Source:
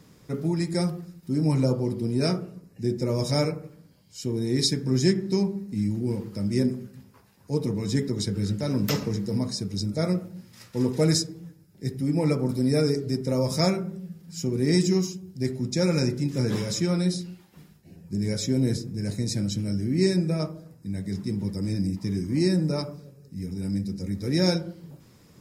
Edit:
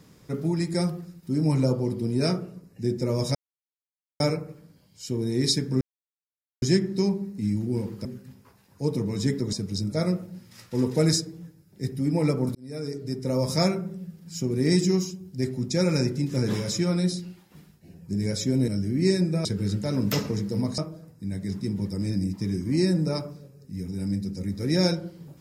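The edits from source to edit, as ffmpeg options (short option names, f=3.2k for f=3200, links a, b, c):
-filter_complex "[0:a]asplit=9[a][b][c][d][e][f][g][h][i];[a]atrim=end=3.35,asetpts=PTS-STARTPTS,afade=t=out:st=3.346:d=0.004:c=hsin,apad=pad_dur=0.85[j];[b]atrim=start=3.35:end=4.96,asetpts=PTS-STARTPTS,afade=t=in:d=0.004:c=hsin,afade=t=out:st=1.606:d=0.004:c=hsin,apad=pad_dur=0.81[k];[c]atrim=start=4.96:end=6.392,asetpts=PTS-STARTPTS,afade=t=in:d=0.004:c=hsin[l];[d]atrim=start=6.738:end=8.222[m];[e]atrim=start=9.548:end=12.57,asetpts=PTS-STARTPTS,afade=t=out:st=3.018:d=0.004:c=hsin[n];[f]atrim=start=12.57:end=18.702,asetpts=PTS-STARTPTS,afade=t=in:d=0.88[o];[g]atrim=start=19.638:end=20.412[p];[h]atrim=start=8.218:end=9.552[q];[i]atrim=start=20.408[r];[j][k][l]concat=n=3:v=0:a=1[s];[s][m]acrossfade=d=0.004:c1=hsin:c2=hsin[t];[n][o]concat=n=2:v=0:a=1[u];[t][u]acrossfade=d=0.004:c1=hsin:c2=hsin[v];[v][p]acrossfade=d=0.004:c1=hsin:c2=hsin[w];[w][q]acrossfade=d=0.004:c1=hsin:c2=hsin[x];[x][r]acrossfade=d=0.004:c1=hsin:c2=hsin"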